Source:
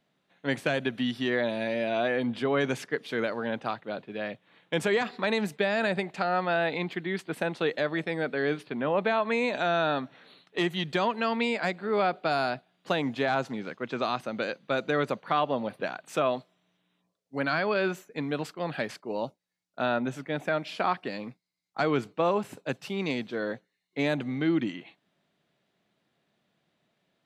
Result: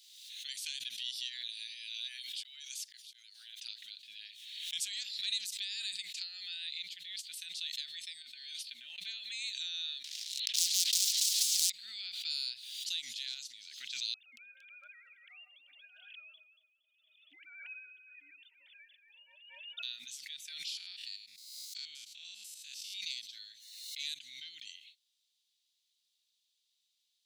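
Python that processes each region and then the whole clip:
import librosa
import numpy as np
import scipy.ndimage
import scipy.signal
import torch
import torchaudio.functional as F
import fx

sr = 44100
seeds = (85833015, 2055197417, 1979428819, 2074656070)

y = fx.chain(x, sr, fx.high_shelf(hz=10000.0, db=8.0),
    fx.auto_swell(attack_ms=694.0),
    fx.highpass(hz=720.0, slope=12), at=(1.9, 3.61))
y = fx.chain(y, sr, fx.comb(ms=3.3, depth=0.44),
    fx.over_compress(threshold_db=-32.0, ratio=-0.5), at=(8.22, 8.98))
y = fx.chain(y, sr, fx.lowpass(hz=2600.0, slope=12),
    fx.leveller(passes=3),
    fx.spectral_comp(ratio=10.0), at=(10.04, 11.7))
y = fx.chain(y, sr, fx.sine_speech(),
    fx.echo_alternate(ms=116, hz=1400.0, feedback_pct=51, wet_db=-5.0), at=(14.14, 19.83))
y = fx.chain(y, sr, fx.spec_steps(hold_ms=100),
    fx.pre_swell(db_per_s=99.0), at=(20.77, 22.95))
y = scipy.signal.sosfilt(scipy.signal.cheby2(4, 60, 1200.0, 'highpass', fs=sr, output='sos'), y)
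y = fx.high_shelf(y, sr, hz=9500.0, db=-4.5)
y = fx.pre_swell(y, sr, db_per_s=43.0)
y = F.gain(torch.from_numpy(y), 7.5).numpy()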